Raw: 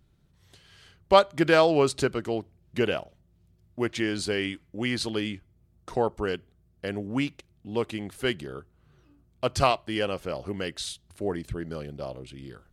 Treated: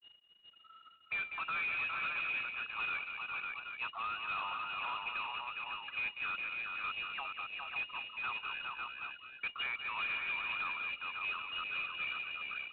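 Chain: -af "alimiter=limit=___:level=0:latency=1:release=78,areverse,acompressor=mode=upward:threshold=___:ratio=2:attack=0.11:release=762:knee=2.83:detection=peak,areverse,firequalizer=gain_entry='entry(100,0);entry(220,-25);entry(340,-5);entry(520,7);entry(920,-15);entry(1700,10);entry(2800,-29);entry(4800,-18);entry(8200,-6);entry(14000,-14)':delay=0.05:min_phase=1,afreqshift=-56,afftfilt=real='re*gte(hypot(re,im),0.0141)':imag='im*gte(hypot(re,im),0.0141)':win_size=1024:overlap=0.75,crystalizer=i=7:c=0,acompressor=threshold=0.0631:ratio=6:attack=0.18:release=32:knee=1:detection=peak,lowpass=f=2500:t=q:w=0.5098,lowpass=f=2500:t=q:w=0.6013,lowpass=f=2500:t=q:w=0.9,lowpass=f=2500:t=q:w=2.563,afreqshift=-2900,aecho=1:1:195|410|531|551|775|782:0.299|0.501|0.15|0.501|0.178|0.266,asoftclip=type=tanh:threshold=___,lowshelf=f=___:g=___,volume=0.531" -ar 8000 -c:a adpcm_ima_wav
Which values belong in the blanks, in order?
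0.335, 0.0355, 0.0473, 420, -5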